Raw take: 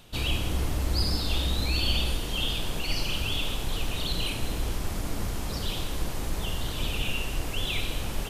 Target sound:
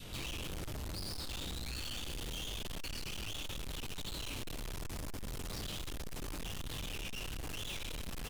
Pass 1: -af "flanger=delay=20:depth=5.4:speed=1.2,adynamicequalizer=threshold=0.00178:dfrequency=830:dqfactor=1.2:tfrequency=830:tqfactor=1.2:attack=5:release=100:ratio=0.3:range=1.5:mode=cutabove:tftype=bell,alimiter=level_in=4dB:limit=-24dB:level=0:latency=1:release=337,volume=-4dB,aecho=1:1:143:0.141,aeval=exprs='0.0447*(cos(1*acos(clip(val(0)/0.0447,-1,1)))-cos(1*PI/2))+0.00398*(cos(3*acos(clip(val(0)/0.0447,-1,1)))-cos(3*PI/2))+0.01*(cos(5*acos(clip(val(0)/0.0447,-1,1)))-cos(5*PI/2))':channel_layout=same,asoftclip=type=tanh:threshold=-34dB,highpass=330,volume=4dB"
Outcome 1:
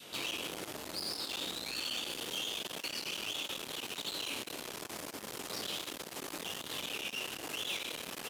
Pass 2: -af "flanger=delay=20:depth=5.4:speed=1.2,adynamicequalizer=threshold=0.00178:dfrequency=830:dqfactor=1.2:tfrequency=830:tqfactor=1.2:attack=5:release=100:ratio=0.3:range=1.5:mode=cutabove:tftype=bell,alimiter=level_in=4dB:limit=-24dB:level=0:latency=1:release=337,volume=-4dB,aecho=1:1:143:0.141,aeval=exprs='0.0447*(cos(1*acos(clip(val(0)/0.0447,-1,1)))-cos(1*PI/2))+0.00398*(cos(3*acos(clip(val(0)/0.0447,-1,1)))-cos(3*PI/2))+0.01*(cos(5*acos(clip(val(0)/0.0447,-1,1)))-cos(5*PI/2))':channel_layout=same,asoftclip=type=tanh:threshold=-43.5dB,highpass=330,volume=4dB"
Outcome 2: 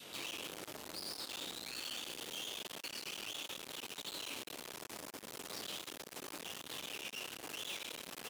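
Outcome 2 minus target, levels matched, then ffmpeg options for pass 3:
250 Hz band −4.5 dB
-af "flanger=delay=20:depth=5.4:speed=1.2,adynamicequalizer=threshold=0.00178:dfrequency=830:dqfactor=1.2:tfrequency=830:tqfactor=1.2:attack=5:release=100:ratio=0.3:range=1.5:mode=cutabove:tftype=bell,alimiter=level_in=4dB:limit=-24dB:level=0:latency=1:release=337,volume=-4dB,aecho=1:1:143:0.141,aeval=exprs='0.0447*(cos(1*acos(clip(val(0)/0.0447,-1,1)))-cos(1*PI/2))+0.00398*(cos(3*acos(clip(val(0)/0.0447,-1,1)))-cos(3*PI/2))+0.01*(cos(5*acos(clip(val(0)/0.0447,-1,1)))-cos(5*PI/2))':channel_layout=same,asoftclip=type=tanh:threshold=-43.5dB,volume=4dB"

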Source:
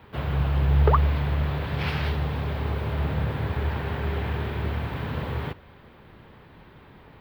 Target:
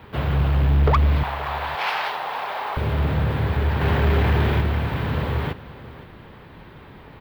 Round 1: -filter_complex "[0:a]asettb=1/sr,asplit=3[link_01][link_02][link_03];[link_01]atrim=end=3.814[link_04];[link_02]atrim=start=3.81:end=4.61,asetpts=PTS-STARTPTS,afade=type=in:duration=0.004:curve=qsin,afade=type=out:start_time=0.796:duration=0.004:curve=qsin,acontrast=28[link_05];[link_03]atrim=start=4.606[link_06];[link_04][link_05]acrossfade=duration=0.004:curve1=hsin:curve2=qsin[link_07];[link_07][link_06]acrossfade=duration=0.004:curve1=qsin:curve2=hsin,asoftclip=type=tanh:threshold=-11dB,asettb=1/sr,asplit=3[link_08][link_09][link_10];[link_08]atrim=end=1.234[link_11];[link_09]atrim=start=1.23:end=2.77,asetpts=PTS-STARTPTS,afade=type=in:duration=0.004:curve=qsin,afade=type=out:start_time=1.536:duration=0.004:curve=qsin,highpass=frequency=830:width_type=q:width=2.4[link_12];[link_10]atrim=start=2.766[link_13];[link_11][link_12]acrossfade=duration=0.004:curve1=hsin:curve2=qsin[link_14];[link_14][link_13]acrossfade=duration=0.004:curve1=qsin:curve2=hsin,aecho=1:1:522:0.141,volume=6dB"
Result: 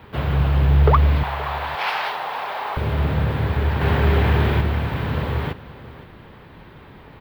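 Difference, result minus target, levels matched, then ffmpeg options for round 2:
soft clipping: distortion −9 dB
-filter_complex "[0:a]asettb=1/sr,asplit=3[link_01][link_02][link_03];[link_01]atrim=end=3.814[link_04];[link_02]atrim=start=3.81:end=4.61,asetpts=PTS-STARTPTS,afade=type=in:duration=0.004:curve=qsin,afade=type=out:start_time=0.796:duration=0.004:curve=qsin,acontrast=28[link_05];[link_03]atrim=start=4.606[link_06];[link_04][link_05]acrossfade=duration=0.004:curve1=hsin:curve2=qsin[link_07];[link_07][link_06]acrossfade=duration=0.004:curve1=qsin:curve2=hsin,asoftclip=type=tanh:threshold=-18dB,asettb=1/sr,asplit=3[link_08][link_09][link_10];[link_08]atrim=end=1.234[link_11];[link_09]atrim=start=1.23:end=2.77,asetpts=PTS-STARTPTS,afade=type=in:duration=0.004:curve=qsin,afade=type=out:start_time=1.536:duration=0.004:curve=qsin,highpass=frequency=830:width_type=q:width=2.4[link_12];[link_10]atrim=start=2.766[link_13];[link_11][link_12]acrossfade=duration=0.004:curve1=hsin:curve2=qsin[link_14];[link_14][link_13]acrossfade=duration=0.004:curve1=qsin:curve2=hsin,aecho=1:1:522:0.141,volume=6dB"

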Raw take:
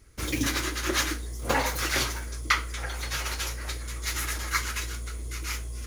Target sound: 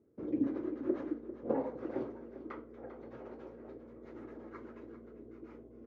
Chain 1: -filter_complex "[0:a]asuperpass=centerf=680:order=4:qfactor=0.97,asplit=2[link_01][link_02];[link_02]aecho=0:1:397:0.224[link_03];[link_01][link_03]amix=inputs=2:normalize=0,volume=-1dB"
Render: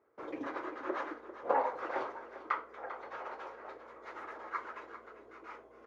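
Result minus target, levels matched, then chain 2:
250 Hz band −10.5 dB
-filter_complex "[0:a]asuperpass=centerf=330:order=4:qfactor=0.97,asplit=2[link_01][link_02];[link_02]aecho=0:1:397:0.224[link_03];[link_01][link_03]amix=inputs=2:normalize=0,volume=-1dB"

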